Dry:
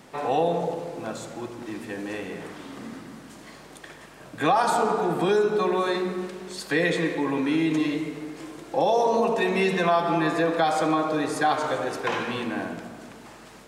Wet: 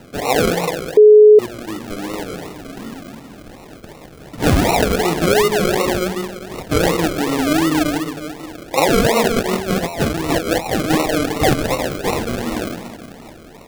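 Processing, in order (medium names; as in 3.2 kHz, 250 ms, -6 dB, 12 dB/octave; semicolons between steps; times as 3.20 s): 9.27–10.90 s: compressor with a negative ratio -26 dBFS, ratio -0.5; decimation with a swept rate 38×, swing 60% 2.7 Hz; 0.97–1.39 s: bleep 424 Hz -10 dBFS; trim +7 dB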